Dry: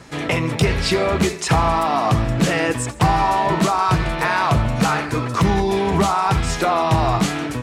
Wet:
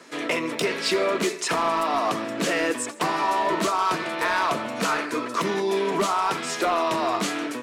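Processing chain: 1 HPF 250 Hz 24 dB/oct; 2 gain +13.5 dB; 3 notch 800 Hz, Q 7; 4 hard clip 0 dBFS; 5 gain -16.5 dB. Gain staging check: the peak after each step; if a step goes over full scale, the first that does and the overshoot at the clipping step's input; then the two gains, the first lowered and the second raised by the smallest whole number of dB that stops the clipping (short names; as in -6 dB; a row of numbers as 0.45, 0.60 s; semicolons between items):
-6.0, +7.5, +7.0, 0.0, -16.5 dBFS; step 2, 7.0 dB; step 2 +6.5 dB, step 5 -9.5 dB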